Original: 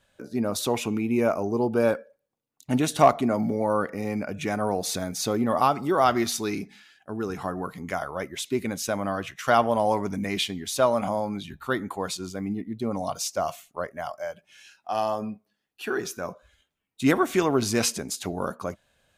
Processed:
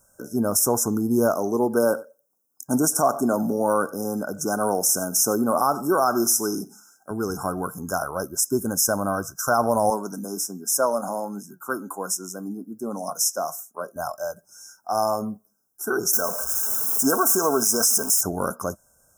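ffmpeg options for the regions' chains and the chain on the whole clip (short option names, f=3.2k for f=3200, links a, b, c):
-filter_complex "[0:a]asettb=1/sr,asplit=3[a][b][c];[a]atrim=end=1.344[d];[b]atrim=start=1.34:end=7.11,asetpts=PTS-STARTPTS,afade=t=in:d=0.004:c=qsin,afade=t=out:st=5.766:d=0.004:c=qsin,highpass=180,aecho=1:1:93:0.0891,atrim=end_sample=254457[e];[c]atrim=start=7.106[f];[d][e]acrossfade=d=0.004:c1=hsin:c2=qsin[g];[g][f]acrossfade=d=0.004:c1=qsin:c2=hsin,asettb=1/sr,asplit=3[h][i][j];[h]atrim=end=9.904[k];[i]atrim=start=9.9:end=13.96,asetpts=PTS-STARTPTS,afade=t=in:d=0.004:c=qsin,afade=t=out:st=4.056:d=0.004:c=qsin,highpass=f=180:w=0.5412,highpass=f=180:w=1.3066,flanger=delay=4.3:depth=3.5:regen=75:speed=1.3:shape=triangular[l];[j]atrim=start=13.956[m];[k][l]acrossfade=d=0.004:c1=hsin:c2=qsin[n];[n][m]acrossfade=d=0.004:c1=qsin:c2=hsin,asettb=1/sr,asplit=3[o][p][q];[o]atrim=end=16.134[r];[p]atrim=start=16.13:end=18.21,asetpts=PTS-STARTPTS,afade=t=in:d=0.004:c=qsin,afade=t=out:st=2.076:d=0.004:c=qsin,aeval=exprs='val(0)+0.5*0.0237*sgn(val(0))':c=same,bass=f=250:g=-12,treble=f=4k:g=2,aecho=1:1:4.5:0.36,atrim=end_sample=91728[s];[q]atrim=start=18.206[t];[r][s]acrossfade=d=0.004:c1=hsin:c2=qsin[u];[u][t]acrossfade=d=0.004:c1=qsin:c2=hsin,aemphasis=mode=production:type=75kf,afftfilt=real='re*(1-between(b*sr/4096,1600,5100))':imag='im*(1-between(b*sr/4096,1600,5100))':win_size=4096:overlap=0.75,alimiter=level_in=11dB:limit=-1dB:release=50:level=0:latency=1,volume=-8dB"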